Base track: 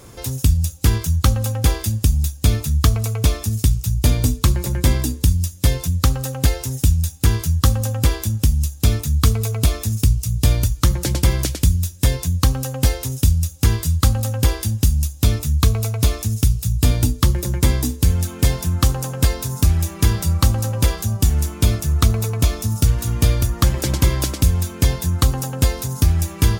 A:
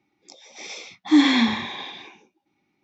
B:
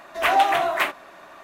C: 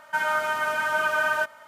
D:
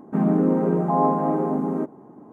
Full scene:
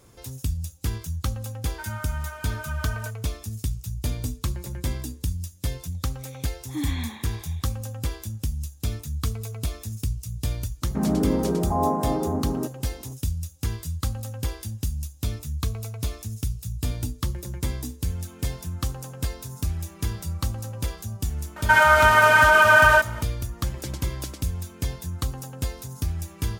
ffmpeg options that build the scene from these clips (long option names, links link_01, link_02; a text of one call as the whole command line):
ffmpeg -i bed.wav -i cue0.wav -i cue1.wav -i cue2.wav -i cue3.wav -filter_complex "[3:a]asplit=2[link_01][link_02];[0:a]volume=-12dB[link_03];[1:a]asuperstop=centerf=5100:order=4:qfactor=4[link_04];[link_02]alimiter=level_in=16.5dB:limit=-1dB:release=50:level=0:latency=1[link_05];[link_01]atrim=end=1.67,asetpts=PTS-STARTPTS,volume=-13.5dB,afade=type=in:duration=0.004:curve=hsin,afade=type=out:start_time=1.666:duration=0.004:curve=hsin,adelay=1650[link_06];[link_04]atrim=end=2.83,asetpts=PTS-STARTPTS,volume=-15.5dB,afade=type=in:duration=0.004:curve=hsin,afade=type=out:start_time=2.826:duration=0.004:curve=hsin,adelay=5630[link_07];[4:a]atrim=end=2.32,asetpts=PTS-STARTPTS,volume=-3.5dB,afade=type=in:duration=0.004:curve=hsin,afade=type=out:start_time=2.316:duration=0.004:curve=hsin,adelay=477162S[link_08];[link_05]atrim=end=1.67,asetpts=PTS-STARTPTS,volume=-5.5dB,afade=type=in:duration=0.004:curve=hsin,afade=type=out:start_time=1.666:duration=0.004:curve=hsin,adelay=21560[link_09];[link_03][link_06][link_07][link_08][link_09]amix=inputs=5:normalize=0" out.wav